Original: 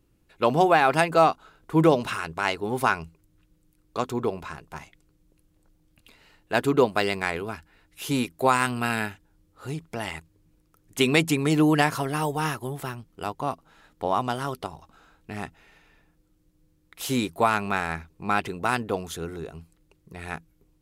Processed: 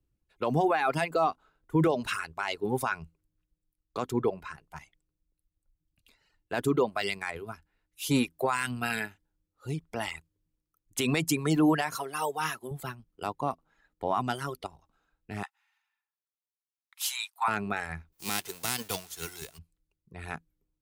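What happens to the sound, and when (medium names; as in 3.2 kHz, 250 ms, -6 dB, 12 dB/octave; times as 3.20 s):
11.97–12.71 s: high-pass 260 Hz 6 dB/octave
15.43–17.48 s: steep high-pass 780 Hz 96 dB/octave
18.12–19.57 s: formants flattened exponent 0.3
whole clip: reverb removal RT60 2 s; peak limiter -18 dBFS; three bands expanded up and down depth 40%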